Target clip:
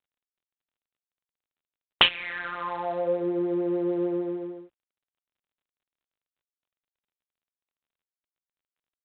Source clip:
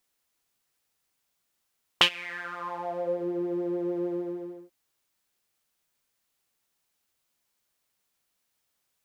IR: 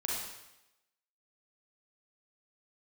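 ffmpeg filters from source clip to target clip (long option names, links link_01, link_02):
-af "volume=3.5dB" -ar 8000 -c:a adpcm_g726 -b:a 32k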